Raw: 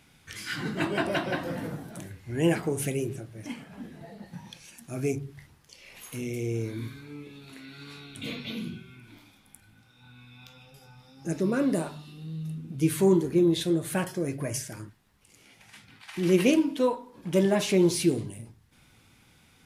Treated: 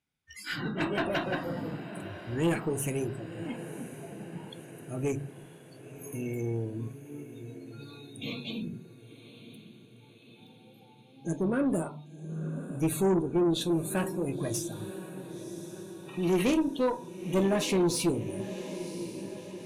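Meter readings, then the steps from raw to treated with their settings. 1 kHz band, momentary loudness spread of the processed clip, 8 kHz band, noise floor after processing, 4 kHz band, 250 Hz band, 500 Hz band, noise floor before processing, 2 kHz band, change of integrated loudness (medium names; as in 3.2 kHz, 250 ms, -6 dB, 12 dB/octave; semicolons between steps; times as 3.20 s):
0.0 dB, 19 LU, -1.5 dB, -56 dBFS, -2.0 dB, -2.5 dB, -3.0 dB, -60 dBFS, -2.5 dB, -4.0 dB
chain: spectral noise reduction 26 dB; echo that smears into a reverb 1039 ms, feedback 59%, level -14 dB; valve stage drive 20 dB, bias 0.3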